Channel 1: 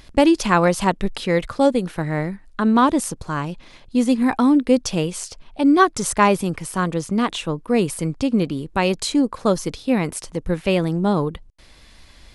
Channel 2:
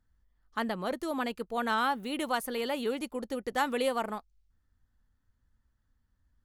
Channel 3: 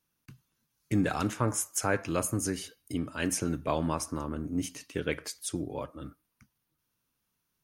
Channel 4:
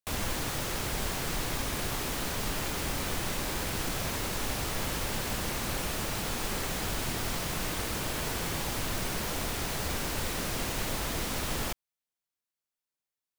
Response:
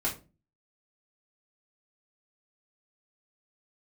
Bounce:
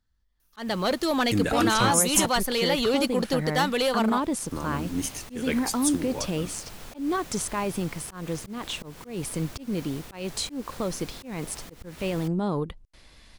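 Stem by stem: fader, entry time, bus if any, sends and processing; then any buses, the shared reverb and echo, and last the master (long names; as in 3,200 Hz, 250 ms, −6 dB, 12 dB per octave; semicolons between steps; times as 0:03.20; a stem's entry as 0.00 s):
−4.5 dB, 1.35 s, no send, brickwall limiter −14 dBFS, peak gain reduction 12 dB
0.0 dB, 0.00 s, no send, parametric band 4,300 Hz +9.5 dB 1.3 octaves; speech leveller 0.5 s; leveller curve on the samples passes 2
+1.5 dB, 0.40 s, muted 0:02.26–0:04.51, no send, high-shelf EQ 5,300 Hz +11 dB
−11.0 dB, 0.55 s, no send, automatic ducking −10 dB, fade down 1.35 s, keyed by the second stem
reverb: not used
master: volume swells 208 ms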